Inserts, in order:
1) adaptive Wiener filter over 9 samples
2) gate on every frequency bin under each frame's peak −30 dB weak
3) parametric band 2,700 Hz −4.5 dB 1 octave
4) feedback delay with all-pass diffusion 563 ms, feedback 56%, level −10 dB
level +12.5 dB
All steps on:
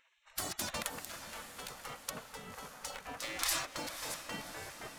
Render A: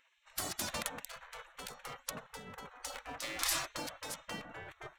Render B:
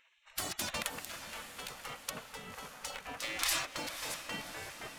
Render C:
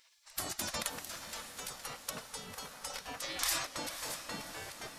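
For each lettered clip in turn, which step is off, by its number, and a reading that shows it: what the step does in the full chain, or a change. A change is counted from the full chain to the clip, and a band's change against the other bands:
4, echo-to-direct ratio −8.5 dB to none audible
3, 2 kHz band +2.5 dB
1, 4 kHz band +1.5 dB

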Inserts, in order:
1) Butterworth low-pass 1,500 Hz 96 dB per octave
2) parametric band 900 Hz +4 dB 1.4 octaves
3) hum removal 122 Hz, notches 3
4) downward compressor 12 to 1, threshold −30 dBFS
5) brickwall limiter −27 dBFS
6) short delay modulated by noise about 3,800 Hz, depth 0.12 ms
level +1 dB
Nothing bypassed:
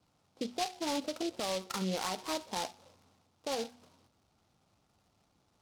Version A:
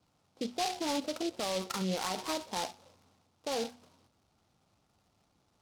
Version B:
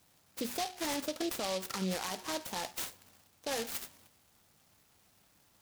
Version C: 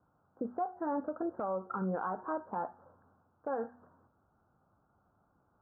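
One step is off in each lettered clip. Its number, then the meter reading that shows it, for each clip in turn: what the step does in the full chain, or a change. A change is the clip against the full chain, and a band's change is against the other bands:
4, average gain reduction 7.0 dB
1, 8 kHz band +3.5 dB
6, 2 kHz band −5.5 dB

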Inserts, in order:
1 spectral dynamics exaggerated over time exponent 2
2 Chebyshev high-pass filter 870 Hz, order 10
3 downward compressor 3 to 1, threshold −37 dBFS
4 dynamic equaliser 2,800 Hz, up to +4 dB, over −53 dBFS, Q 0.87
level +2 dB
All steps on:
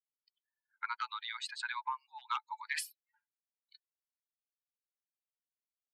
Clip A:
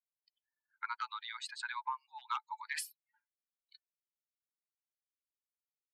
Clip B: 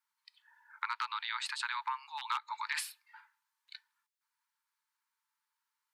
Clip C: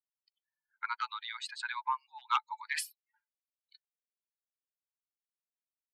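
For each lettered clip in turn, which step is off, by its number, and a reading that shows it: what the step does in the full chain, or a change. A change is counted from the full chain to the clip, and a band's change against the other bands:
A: 4, 4 kHz band −2.0 dB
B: 1, change in momentary loudness spread +12 LU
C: 3, change in crest factor +2.0 dB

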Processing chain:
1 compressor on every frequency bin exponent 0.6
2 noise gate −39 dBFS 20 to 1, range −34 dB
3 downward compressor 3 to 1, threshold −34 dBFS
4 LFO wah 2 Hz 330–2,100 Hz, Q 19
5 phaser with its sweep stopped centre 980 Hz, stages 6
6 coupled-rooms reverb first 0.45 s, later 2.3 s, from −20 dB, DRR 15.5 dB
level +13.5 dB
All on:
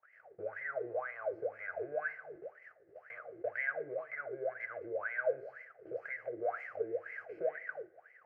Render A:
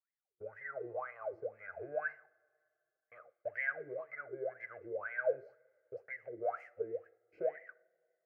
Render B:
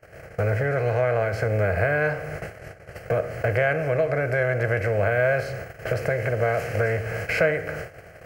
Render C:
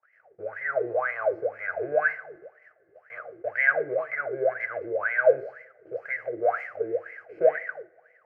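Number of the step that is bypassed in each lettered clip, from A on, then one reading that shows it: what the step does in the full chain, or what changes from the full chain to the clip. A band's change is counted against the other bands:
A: 1, 125 Hz band +1.5 dB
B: 4, 125 Hz band +23.5 dB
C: 3, average gain reduction 8.5 dB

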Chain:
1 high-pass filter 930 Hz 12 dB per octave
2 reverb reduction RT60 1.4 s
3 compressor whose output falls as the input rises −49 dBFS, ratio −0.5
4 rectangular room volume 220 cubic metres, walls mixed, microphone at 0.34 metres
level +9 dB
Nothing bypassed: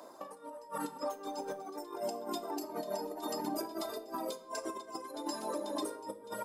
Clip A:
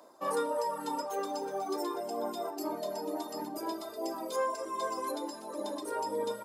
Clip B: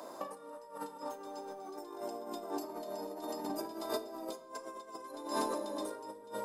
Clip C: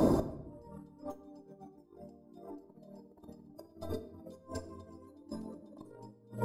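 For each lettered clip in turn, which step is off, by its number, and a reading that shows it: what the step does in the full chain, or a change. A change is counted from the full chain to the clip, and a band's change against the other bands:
3, change in momentary loudness spread −1 LU
2, change in crest factor +3.5 dB
1, 125 Hz band +24.0 dB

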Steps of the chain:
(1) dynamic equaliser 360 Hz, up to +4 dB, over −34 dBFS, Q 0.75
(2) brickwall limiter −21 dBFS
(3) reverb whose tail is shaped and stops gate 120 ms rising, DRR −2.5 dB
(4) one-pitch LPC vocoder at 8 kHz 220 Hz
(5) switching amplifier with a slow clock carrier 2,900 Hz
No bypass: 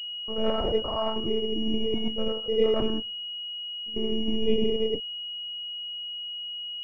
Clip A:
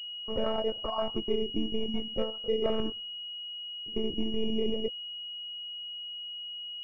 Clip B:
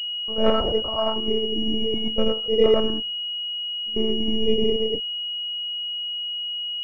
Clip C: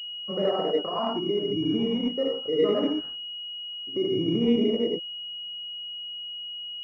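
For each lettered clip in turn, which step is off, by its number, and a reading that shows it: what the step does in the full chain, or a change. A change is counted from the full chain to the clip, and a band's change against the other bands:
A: 3, change in integrated loudness −4.5 LU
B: 2, average gain reduction 2.0 dB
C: 4, 250 Hz band +2.5 dB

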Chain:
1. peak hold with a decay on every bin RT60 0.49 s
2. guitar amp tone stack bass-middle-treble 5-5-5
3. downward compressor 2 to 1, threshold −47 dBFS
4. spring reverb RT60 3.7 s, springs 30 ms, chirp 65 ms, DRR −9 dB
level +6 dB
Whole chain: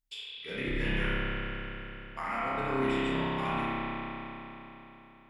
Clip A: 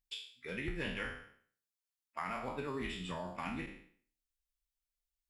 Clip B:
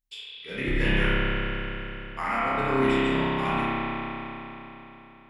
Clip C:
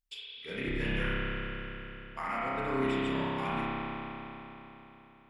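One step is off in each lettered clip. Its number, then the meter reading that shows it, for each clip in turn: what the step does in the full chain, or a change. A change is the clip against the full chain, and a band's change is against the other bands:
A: 4, change in momentary loudness spread −5 LU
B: 3, average gain reduction 4.5 dB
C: 1, change in integrated loudness −1.0 LU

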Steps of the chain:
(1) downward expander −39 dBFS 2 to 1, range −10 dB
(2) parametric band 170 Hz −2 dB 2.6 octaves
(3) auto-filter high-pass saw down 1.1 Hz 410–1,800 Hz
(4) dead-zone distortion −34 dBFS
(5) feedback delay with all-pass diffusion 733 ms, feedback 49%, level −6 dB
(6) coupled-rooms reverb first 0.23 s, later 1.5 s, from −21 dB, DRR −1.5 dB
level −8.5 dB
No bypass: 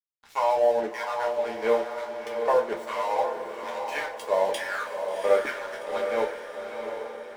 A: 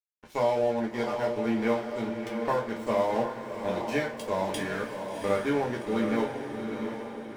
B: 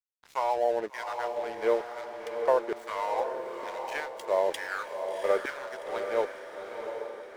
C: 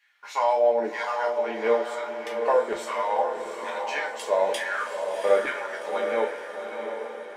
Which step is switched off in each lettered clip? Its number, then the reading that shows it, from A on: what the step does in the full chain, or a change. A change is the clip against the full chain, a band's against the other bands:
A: 3, 250 Hz band +15.0 dB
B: 6, echo-to-direct ratio 3.5 dB to −5.0 dB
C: 4, distortion level −17 dB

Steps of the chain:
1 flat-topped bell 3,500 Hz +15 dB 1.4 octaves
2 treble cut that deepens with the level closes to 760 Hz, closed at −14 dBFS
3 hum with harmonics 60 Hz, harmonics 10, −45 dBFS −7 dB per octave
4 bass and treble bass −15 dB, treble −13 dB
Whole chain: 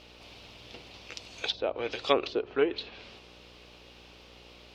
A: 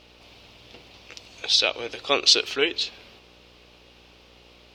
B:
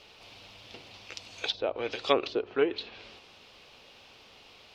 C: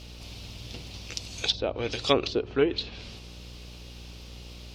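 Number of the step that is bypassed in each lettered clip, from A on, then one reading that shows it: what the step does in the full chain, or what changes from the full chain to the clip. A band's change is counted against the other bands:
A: 2, change in crest factor −3.5 dB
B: 3, 125 Hz band −1.5 dB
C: 4, 125 Hz band +12.0 dB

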